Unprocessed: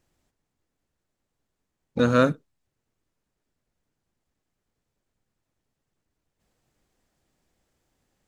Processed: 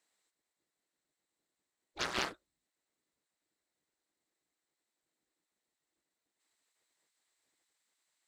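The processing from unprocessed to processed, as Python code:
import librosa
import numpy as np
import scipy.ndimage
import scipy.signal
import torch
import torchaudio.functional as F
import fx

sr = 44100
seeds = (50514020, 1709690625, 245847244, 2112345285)

y = fx.spec_gate(x, sr, threshold_db=-15, keep='weak')
y = fx.graphic_eq_31(y, sr, hz=(100, 315, 2000, 4000, 8000), db=(-9, 7, 6, 9, 10))
y = fx.doppler_dist(y, sr, depth_ms=0.67)
y = y * 10.0 ** (-6.5 / 20.0)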